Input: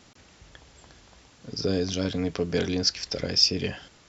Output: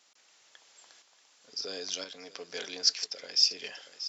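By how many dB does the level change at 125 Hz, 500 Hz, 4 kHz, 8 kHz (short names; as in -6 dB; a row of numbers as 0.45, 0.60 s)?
under -30 dB, -14.5 dB, -2.5 dB, n/a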